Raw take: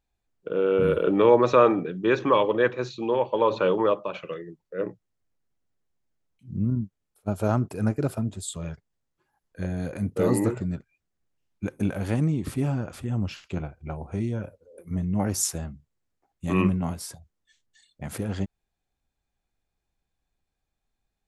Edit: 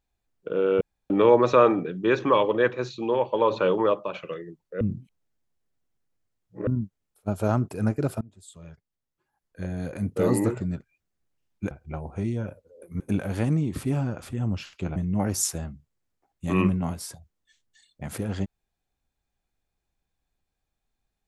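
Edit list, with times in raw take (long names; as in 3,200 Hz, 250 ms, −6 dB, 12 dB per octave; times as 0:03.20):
0:00.81–0:01.10: fill with room tone
0:04.81–0:06.67: reverse
0:08.21–0:10.12: fade in, from −23 dB
0:13.67–0:14.96: move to 0:11.71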